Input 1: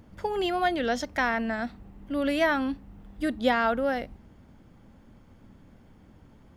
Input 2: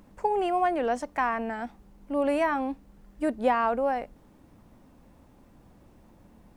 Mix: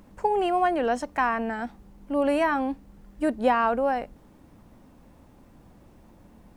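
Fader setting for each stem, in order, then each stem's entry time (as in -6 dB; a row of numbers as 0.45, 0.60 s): -16.5, +2.5 dB; 0.00, 0.00 s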